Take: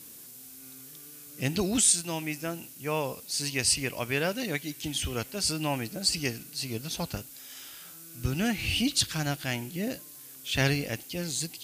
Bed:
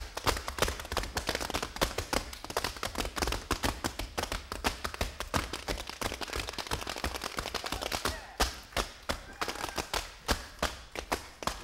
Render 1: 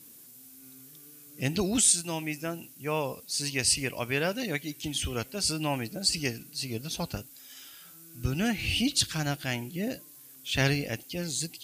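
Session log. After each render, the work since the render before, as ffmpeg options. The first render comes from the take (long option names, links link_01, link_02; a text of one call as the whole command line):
ffmpeg -i in.wav -af "afftdn=noise_reduction=6:noise_floor=-48" out.wav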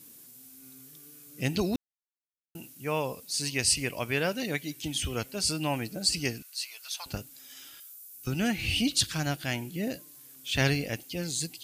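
ffmpeg -i in.wav -filter_complex "[0:a]asettb=1/sr,asplit=3[link_01][link_02][link_03];[link_01]atrim=end=6.424[link_04];[link_02]atrim=start=6.42:end=7.06,asetpts=PTS-STARTPTS,afade=type=in:duration=0.004:curve=qsin,afade=type=out:start_time=0.636:duration=0.004:curve=qsin,highpass=frequency=1000:width=0.5412,highpass=frequency=1000:width=1.3066[link_05];[link_03]atrim=start=7.056[link_06];[link_04][link_05]acrossfade=duration=0.004:curve1=hsin:curve2=qsin[link_07];[link_07][link_06]acrossfade=duration=0.004:curve1=qsin:curve2=hsin,asettb=1/sr,asplit=3[link_08][link_09][link_10];[link_08]atrim=end=7.804[link_11];[link_09]atrim=start=7.8:end=8.27,asetpts=PTS-STARTPTS,afade=type=in:duration=0.004:curve=qsin,afade=type=out:start_time=0.466:duration=0.004:curve=qsin,aderivative[link_12];[link_10]atrim=start=8.266[link_13];[link_11][link_12]acrossfade=duration=0.004:curve1=hsin:curve2=qsin[link_14];[link_14][link_13]acrossfade=duration=0.004:curve1=qsin:curve2=hsin,asplit=3[link_15][link_16][link_17];[link_15]atrim=end=1.76,asetpts=PTS-STARTPTS,afade=type=out:start_time=1.756:duration=0.004:curve=hsin[link_18];[link_16]atrim=start=1.76:end=2.55,asetpts=PTS-STARTPTS,volume=0[link_19];[link_17]atrim=start=2.55,asetpts=PTS-STARTPTS,afade=type=in:duration=0.004:curve=hsin[link_20];[link_18][link_19][link_20]concat=n=3:v=0:a=1" out.wav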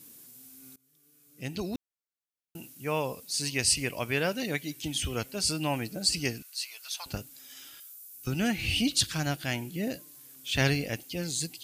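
ffmpeg -i in.wav -filter_complex "[0:a]asplit=2[link_01][link_02];[link_01]atrim=end=0.76,asetpts=PTS-STARTPTS,afade=type=out:start_time=0.756:duration=0.004:curve=hsin:silence=0.0630957[link_03];[link_02]atrim=start=0.76,asetpts=PTS-STARTPTS,afade=type=in:duration=1.84:silence=0.0630957[link_04];[link_03][link_04]concat=n=2:v=0:a=1" out.wav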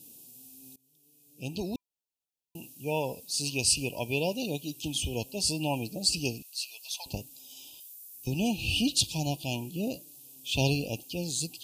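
ffmpeg -i in.wav -af "afftfilt=real='re*(1-between(b*sr/4096,1000,2400))':imag='im*(1-between(b*sr/4096,1000,2400))':win_size=4096:overlap=0.75" out.wav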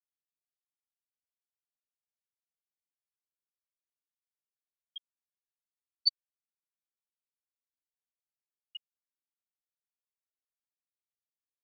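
ffmpeg -i in.wav -af "tiltshelf=frequency=1200:gain=-5,afftfilt=real='re*gte(hypot(re,im),0.631)':imag='im*gte(hypot(re,im),0.631)':win_size=1024:overlap=0.75" out.wav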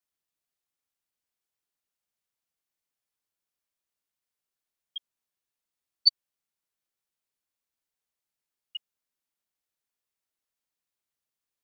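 ffmpeg -i in.wav -af "volume=6.5dB" out.wav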